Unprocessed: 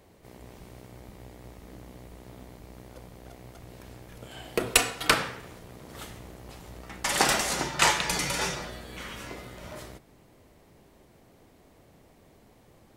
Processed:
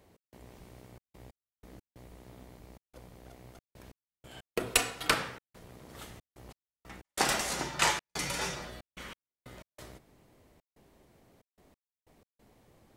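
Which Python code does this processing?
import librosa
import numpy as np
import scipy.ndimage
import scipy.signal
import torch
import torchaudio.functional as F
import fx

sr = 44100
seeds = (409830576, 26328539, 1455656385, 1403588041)

y = fx.step_gate(x, sr, bpm=92, pattern='x.xxxx.x..x.xxxx', floor_db=-60.0, edge_ms=4.5)
y = y * 10.0 ** (-5.0 / 20.0)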